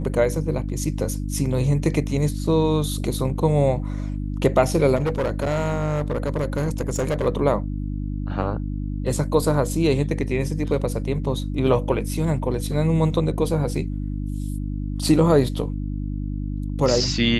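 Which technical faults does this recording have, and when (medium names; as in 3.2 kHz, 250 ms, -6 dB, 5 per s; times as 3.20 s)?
hum 50 Hz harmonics 6 -27 dBFS
4.95–7.27 s: clipped -18.5 dBFS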